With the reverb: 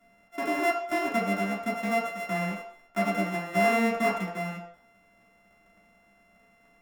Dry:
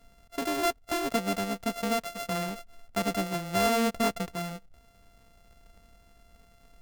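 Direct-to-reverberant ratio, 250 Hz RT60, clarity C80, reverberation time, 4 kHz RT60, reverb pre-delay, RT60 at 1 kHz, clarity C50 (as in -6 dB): -5.5 dB, 0.45 s, 9.0 dB, 0.60 s, 0.60 s, 3 ms, 0.65 s, 5.5 dB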